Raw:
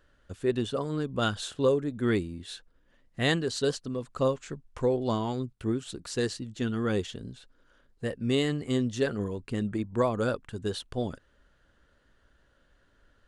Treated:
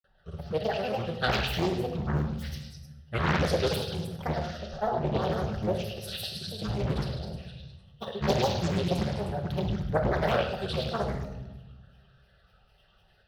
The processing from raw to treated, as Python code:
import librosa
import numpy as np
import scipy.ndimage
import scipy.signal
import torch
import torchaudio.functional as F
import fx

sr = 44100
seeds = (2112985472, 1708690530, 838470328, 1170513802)

p1 = scipy.signal.sosfilt(scipy.signal.butter(2, 50.0, 'highpass', fs=sr, output='sos'), x)
p2 = fx.rider(p1, sr, range_db=4, speed_s=2.0)
p3 = p1 + (p2 * 10.0 ** (-1.0 / 20.0))
p4 = fx.granulator(p3, sr, seeds[0], grain_ms=100.0, per_s=20.0, spray_ms=100.0, spread_st=12)
p5 = fx.fixed_phaser(p4, sr, hz=1500.0, stages=8)
p6 = p5 + fx.echo_stepped(p5, sr, ms=103, hz=3300.0, octaves=0.7, feedback_pct=70, wet_db=-1.0, dry=0)
p7 = fx.room_shoebox(p6, sr, seeds[1], volume_m3=580.0, walls='mixed', distance_m=1.1)
p8 = fx.doppler_dist(p7, sr, depth_ms=0.8)
y = p8 * 10.0 ** (-2.5 / 20.0)